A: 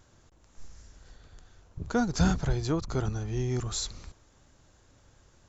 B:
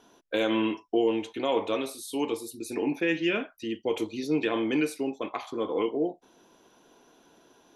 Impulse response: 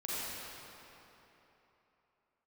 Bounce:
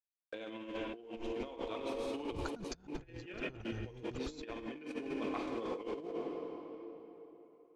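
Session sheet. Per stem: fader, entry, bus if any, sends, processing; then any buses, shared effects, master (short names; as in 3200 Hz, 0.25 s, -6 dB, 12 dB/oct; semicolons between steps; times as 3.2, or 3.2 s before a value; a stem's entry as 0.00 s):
+0.5 dB, 0.55 s, no send, step gate ".xxxx.x.xx" 194 bpm -60 dB; auto duck -8 dB, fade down 1.85 s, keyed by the second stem
-14.5 dB, 0.00 s, send -3.5 dB, sample gate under -40 dBFS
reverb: on, RT60 3.4 s, pre-delay 35 ms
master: LPF 4900 Hz 12 dB/oct; low shelf 66 Hz +3 dB; negative-ratio compressor -41 dBFS, ratio -0.5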